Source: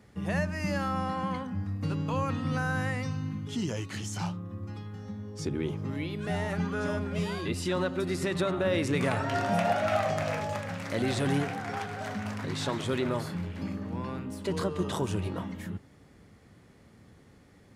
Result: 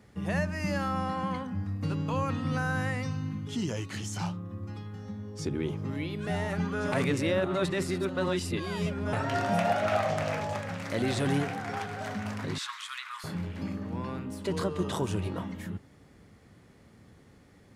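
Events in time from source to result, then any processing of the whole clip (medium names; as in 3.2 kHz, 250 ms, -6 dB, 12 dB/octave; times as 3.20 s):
6.92–9.13 s: reverse
9.81–10.82 s: loudspeaker Doppler distortion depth 0.17 ms
12.58–13.24 s: elliptic high-pass 1.1 kHz, stop band 50 dB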